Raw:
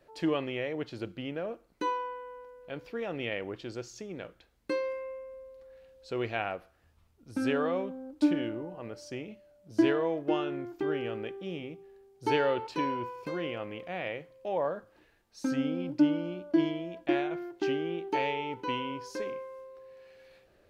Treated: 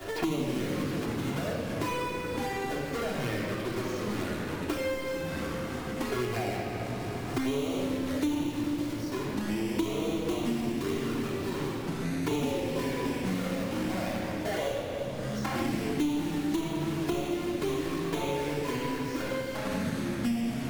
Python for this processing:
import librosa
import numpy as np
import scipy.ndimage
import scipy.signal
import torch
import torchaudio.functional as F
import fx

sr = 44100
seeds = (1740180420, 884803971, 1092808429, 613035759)

y = fx.halfwave_hold(x, sr)
y = fx.highpass(y, sr, hz=380.0, slope=24, at=(12.6, 15.62))
y = fx.env_flanger(y, sr, rest_ms=11.0, full_db=-23.5)
y = fx.echo_feedback(y, sr, ms=330, feedback_pct=56, wet_db=-19)
y = fx.room_shoebox(y, sr, seeds[0], volume_m3=2100.0, walls='mixed', distance_m=3.2)
y = fx.echo_pitch(y, sr, ms=90, semitones=-4, count=3, db_per_echo=-6.0)
y = fx.band_squash(y, sr, depth_pct=100)
y = y * librosa.db_to_amplitude(-9.0)